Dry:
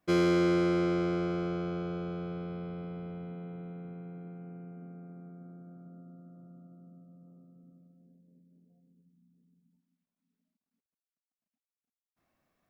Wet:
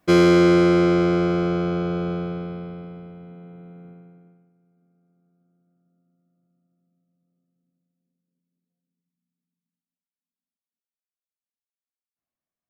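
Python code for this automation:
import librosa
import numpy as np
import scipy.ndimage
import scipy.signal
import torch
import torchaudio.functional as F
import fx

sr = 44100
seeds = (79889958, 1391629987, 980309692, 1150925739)

y = fx.gain(x, sr, db=fx.line((2.12, 11.0), (3.15, 0.0), (3.89, 0.0), (4.3, -9.0), (4.53, -19.0)))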